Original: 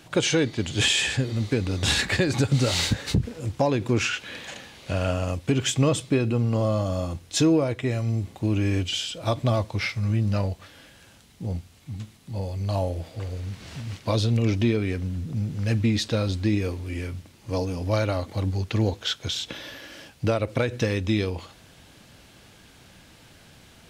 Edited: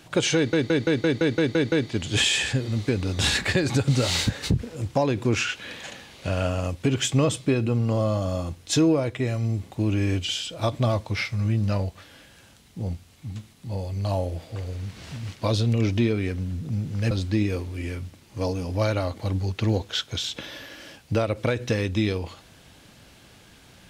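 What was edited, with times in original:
0.36 stutter 0.17 s, 9 plays
15.75–16.23 cut

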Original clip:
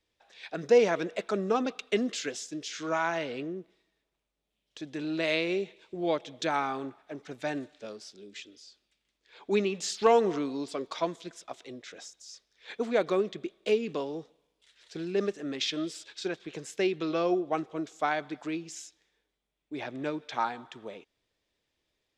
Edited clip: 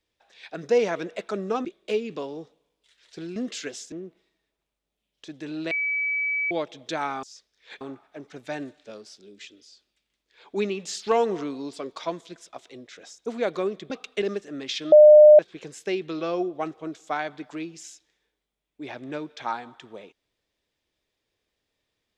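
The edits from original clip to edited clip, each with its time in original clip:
1.65–1.97 swap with 13.43–15.14
2.53–3.45 cut
5.24–6.04 bleep 2290 Hz -23 dBFS
12.21–12.79 move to 6.76
15.84–16.31 bleep 604 Hz -7 dBFS

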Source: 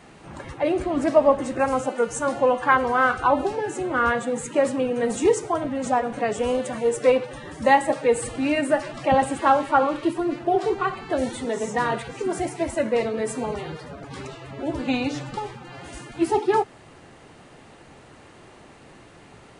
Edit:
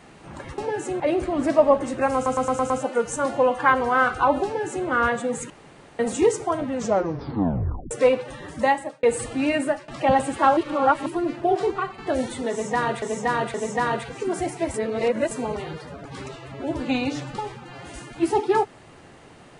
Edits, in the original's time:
1.73 stutter 0.11 s, 6 plays
3.48–3.9 copy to 0.58
4.53–5.02 room tone
5.74 tape stop 1.20 s
7.56–8.06 fade out
8.65–8.91 fade out, to -20 dB
9.6–10.09 reverse
10.72–11.01 fade out, to -7.5 dB
11.53–12.05 loop, 3 plays
12.73–13.3 reverse

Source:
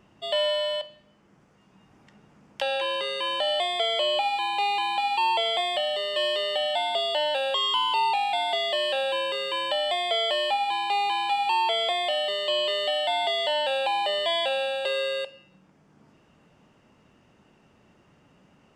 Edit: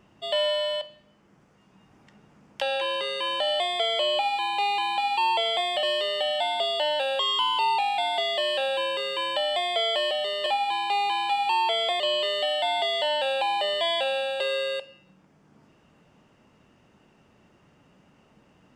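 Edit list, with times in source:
5.83–6.18 move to 10.46
12–12.45 cut

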